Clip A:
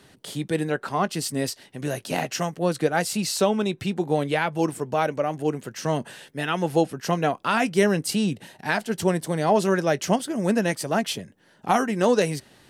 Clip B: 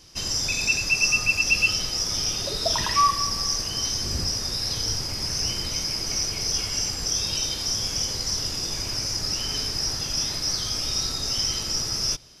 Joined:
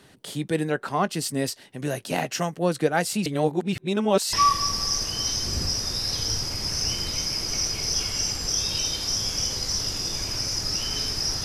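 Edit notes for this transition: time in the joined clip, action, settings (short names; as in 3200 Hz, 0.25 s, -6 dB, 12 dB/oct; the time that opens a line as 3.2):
clip A
3.26–4.33 reverse
4.33 switch to clip B from 2.91 s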